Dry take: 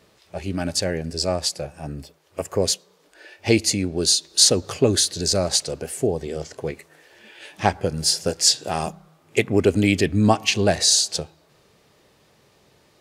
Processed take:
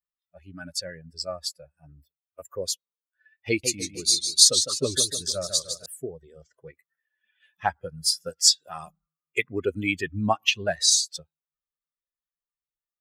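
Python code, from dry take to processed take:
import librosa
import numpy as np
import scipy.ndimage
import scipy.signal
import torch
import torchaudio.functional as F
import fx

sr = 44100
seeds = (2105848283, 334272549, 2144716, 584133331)

y = fx.bin_expand(x, sr, power=2.0)
y = fx.tilt_shelf(y, sr, db=-5.5, hz=660.0)
y = fx.echo_warbled(y, sr, ms=151, feedback_pct=47, rate_hz=2.8, cents=157, wet_db=-8.0, at=(3.48, 5.86))
y = y * 10.0 ** (-3.0 / 20.0)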